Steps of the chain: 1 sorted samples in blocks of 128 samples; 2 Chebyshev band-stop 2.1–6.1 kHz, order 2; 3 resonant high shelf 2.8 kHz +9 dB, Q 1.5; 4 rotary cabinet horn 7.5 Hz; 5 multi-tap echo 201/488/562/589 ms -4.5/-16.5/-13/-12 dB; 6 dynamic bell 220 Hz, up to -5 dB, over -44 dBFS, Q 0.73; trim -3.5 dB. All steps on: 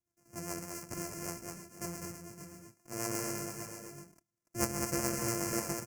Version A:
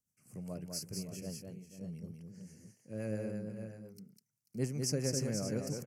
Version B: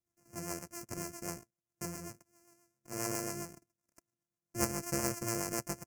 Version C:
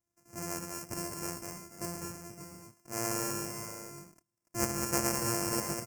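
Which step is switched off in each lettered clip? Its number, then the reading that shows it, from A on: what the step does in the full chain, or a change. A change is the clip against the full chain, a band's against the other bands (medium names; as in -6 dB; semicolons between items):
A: 1, crest factor change -8.5 dB; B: 5, momentary loudness spread change -3 LU; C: 4, 1 kHz band +2.0 dB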